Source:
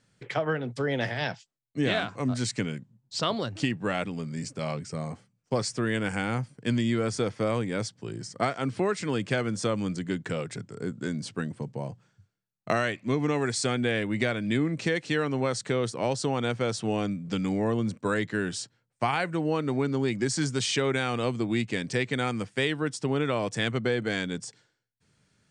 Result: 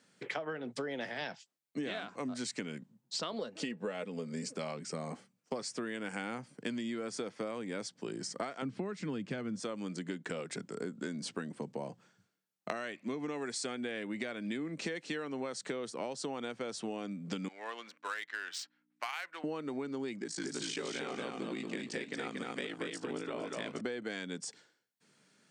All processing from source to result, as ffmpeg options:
ffmpeg -i in.wav -filter_complex "[0:a]asettb=1/sr,asplit=3[link_01][link_02][link_03];[link_01]atrim=end=3.334[link_04];[link_02]atrim=start=3.33:end=4.56,asetpts=PTS-STARTPTS,afade=type=in:duration=0.004:curve=qsin,afade=type=out:start_time=1.226:duration=0.004:curve=qsin,equalizer=frequency=500:width=5.3:gain=13.5,aecho=1:1:4.7:0.42,atrim=end_sample=54243[link_05];[link_03]atrim=start=4.556[link_06];[link_04][link_05]acrossfade=duration=0.004:curve1=hsin:curve2=qsin[link_07];[link_07][link_06]acrossfade=duration=0.004:curve1=qsin:curve2=hsin,asettb=1/sr,asplit=3[link_08][link_09][link_10];[link_08]atrim=end=8.624[link_11];[link_09]atrim=start=8.62:end=9.6,asetpts=PTS-STARTPTS,afade=type=in:duration=0.004:curve=qsin,afade=type=out:start_time=0.976:duration=0.004:curve=qsin,lowpass=7900,bass=frequency=250:gain=14,treble=frequency=4000:gain=-2[link_12];[link_10]atrim=start=9.596[link_13];[link_11][link_12]acrossfade=duration=0.004:curve1=hsin:curve2=qsin[link_14];[link_14][link_13]acrossfade=duration=0.004:curve1=qsin:curve2=hsin,asettb=1/sr,asplit=3[link_15][link_16][link_17];[link_15]atrim=end=17.484[link_18];[link_16]atrim=start=17.48:end=19.44,asetpts=PTS-STARTPTS,afade=type=in:duration=0.004:curve=qsin,afade=type=out:start_time=1.956:duration=0.004:curve=qsin,adynamicsmooth=sensitivity=5.5:basefreq=2600,aeval=exprs='val(0)+0.01*(sin(2*PI*60*n/s)+sin(2*PI*2*60*n/s)/2+sin(2*PI*3*60*n/s)/3+sin(2*PI*4*60*n/s)/4+sin(2*PI*5*60*n/s)/5)':channel_layout=same,highpass=1400[link_19];[link_17]atrim=start=19.436[link_20];[link_18][link_19]acrossfade=duration=0.004:curve1=hsin:curve2=qsin[link_21];[link_21][link_20]acrossfade=duration=0.004:curve1=qsin:curve2=hsin,asettb=1/sr,asplit=3[link_22][link_23][link_24];[link_22]atrim=end=20.194[link_25];[link_23]atrim=start=20.19:end=23.81,asetpts=PTS-STARTPTS,afade=type=in:duration=0.004:curve=qsin,afade=type=out:start_time=3.616:duration=0.004:curve=qsin,flanger=delay=4.5:depth=5.3:regen=75:speed=1.6:shape=triangular,aeval=exprs='val(0)*sin(2*PI*27*n/s)':channel_layout=same,aecho=1:1:232|464|696:0.668|0.16|0.0385,atrim=end_sample=159642[link_26];[link_24]atrim=start=23.806[link_27];[link_25][link_26]acrossfade=duration=0.004:curve1=hsin:curve2=qsin[link_28];[link_28][link_27]acrossfade=duration=0.004:curve1=qsin:curve2=hsin,highpass=frequency=190:width=0.5412,highpass=frequency=190:width=1.3066,acompressor=threshold=-37dB:ratio=10,volume=2dB" out.wav

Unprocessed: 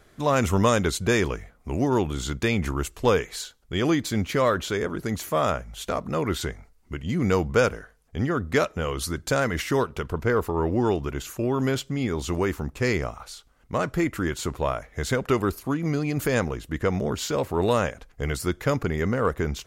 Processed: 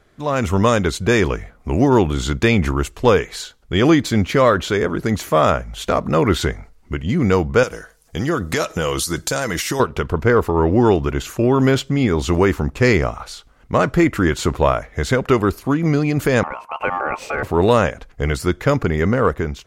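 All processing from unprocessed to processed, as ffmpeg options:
ffmpeg -i in.wav -filter_complex "[0:a]asettb=1/sr,asplit=3[link_01][link_02][link_03];[link_01]atrim=end=7.634[link_04];[link_02]atrim=start=7.63:end=9.8,asetpts=PTS-STARTPTS,afade=type=in:duration=0.004:curve=qsin,afade=type=out:start_time=2.166:duration=0.004:curve=qsin,bass=frequency=250:gain=-4,treble=frequency=4000:gain=14,acompressor=threshold=-27dB:ratio=6:attack=3.2:release=140:knee=1:detection=peak,aecho=1:1:6.1:0.31,atrim=end_sample=95697[link_05];[link_03]atrim=start=9.796[link_06];[link_04][link_05]acrossfade=duration=0.004:curve1=hsin:curve2=qsin[link_07];[link_07][link_06]acrossfade=duration=0.004:curve1=qsin:curve2=hsin,asettb=1/sr,asplit=3[link_08][link_09][link_10];[link_08]atrim=end=16.434[link_11];[link_09]atrim=start=16.43:end=17.43,asetpts=PTS-STARTPTS,afade=type=in:duration=0.004:curve=qsin,afade=type=out:start_time=0.996:duration=0.004:curve=qsin,highshelf=frequency=2100:width_type=q:width=3:gain=-9,acompressor=threshold=-33dB:ratio=1.5:attack=3.2:release=140:knee=1:detection=peak,aeval=exprs='val(0)*sin(2*PI*990*n/s)':channel_layout=same[link_12];[link_10]atrim=start=17.426[link_13];[link_11][link_12]acrossfade=duration=0.004:curve1=hsin:curve2=qsin[link_14];[link_14][link_13]acrossfade=duration=0.004:curve1=qsin:curve2=hsin,highshelf=frequency=7000:gain=-9,dynaudnorm=framelen=120:gausssize=7:maxgain=12dB" out.wav

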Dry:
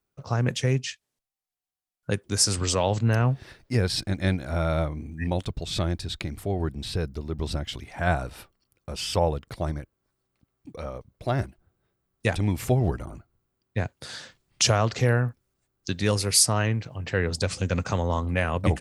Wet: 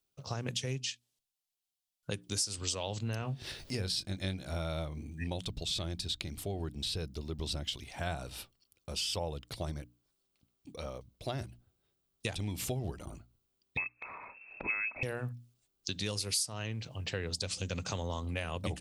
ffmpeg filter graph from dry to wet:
ffmpeg -i in.wav -filter_complex "[0:a]asettb=1/sr,asplit=3[link_01][link_02][link_03];[link_01]atrim=end=3.204[link_04];[link_02]atrim=start=3.2:end=4.43,asetpts=PTS-STARTPTS,afade=type=in:duration=0.004:curve=qsin,afade=type=out:start_time=1.226:duration=0.004:curve=qsin,asplit=2[link_05][link_06];[link_06]adelay=21,volume=-10dB[link_07];[link_05][link_07]amix=inputs=2:normalize=0,atrim=end_sample=54243,acompressor=mode=upward:threshold=-29dB:ratio=2.5:attack=3.2:release=140:knee=2.83:detection=peak[link_08];[link_03]atrim=start=4.426[link_09];[link_04][link_08]acrossfade=duration=0.004:curve1=hsin:curve2=qsin[link_10];[link_10][link_09]acrossfade=duration=0.004:curve1=qsin:curve2=hsin,asettb=1/sr,asplit=3[link_11][link_12][link_13];[link_11]atrim=end=13.774[link_14];[link_12]atrim=start=13.77:end=15.03,asetpts=PTS-STARTPTS,afade=type=in:duration=0.004:curve=qsin,afade=type=out:start_time=1.256:duration=0.004:curve=qsin,lowpass=frequency=2300:width_type=q:width=0.5098,lowpass=frequency=2300:width_type=q:width=0.6013,lowpass=frequency=2300:width_type=q:width=0.9,lowpass=frequency=2300:width_type=q:width=2.563,afreqshift=-2700,tiltshelf=frequency=1500:gain=3.5,acompressor=mode=upward:threshold=-33dB:ratio=2.5:attack=3.2:release=140:knee=2.83:detection=peak[link_15];[link_13]atrim=start=15.026[link_16];[link_14][link_15]acrossfade=duration=0.004:curve1=hsin:curve2=qsin[link_17];[link_17][link_16]acrossfade=duration=0.004:curve1=qsin:curve2=hsin,highshelf=frequency=2400:width_type=q:width=1.5:gain=7.5,bandreject=frequency=60:width_type=h:width=6,bandreject=frequency=120:width_type=h:width=6,bandreject=frequency=180:width_type=h:width=6,bandreject=frequency=240:width_type=h:width=6,bandreject=frequency=300:width_type=h:width=6,acompressor=threshold=-27dB:ratio=4,volume=-6dB" out.wav

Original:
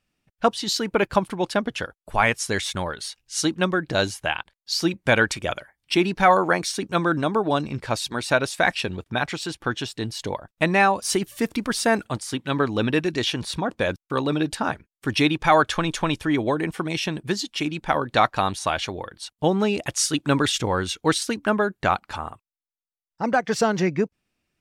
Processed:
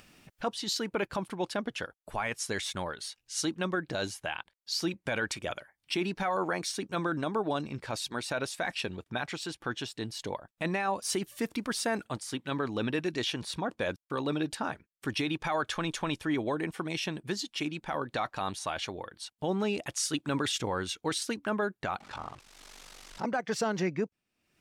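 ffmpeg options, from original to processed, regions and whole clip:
ffmpeg -i in.wav -filter_complex "[0:a]asettb=1/sr,asplit=3[link_01][link_02][link_03];[link_01]atrim=end=22.004[link_04];[link_02]atrim=start=22:end=23.25,asetpts=PTS-STARTPTS,afade=type=in:duration=0.004:curve=qsin,afade=type=out:start_time=1.246:duration=0.004:curve=qsin,aeval=exprs='val(0)+0.5*0.0158*sgn(val(0))':channel_layout=same,lowpass=6600,aeval=exprs='val(0)*sin(2*PI*24*n/s)':channel_layout=same[link_05];[link_03]atrim=start=23.246[link_06];[link_04][link_05]acrossfade=duration=0.004:curve1=hsin:curve2=qsin[link_07];[link_07][link_06]acrossfade=duration=0.004:curve1=qsin:curve2=hsin,lowshelf=frequency=77:gain=-9.5,acompressor=mode=upward:threshold=-31dB:ratio=2.5,alimiter=limit=-14dB:level=0:latency=1:release=13,volume=-7dB" out.wav

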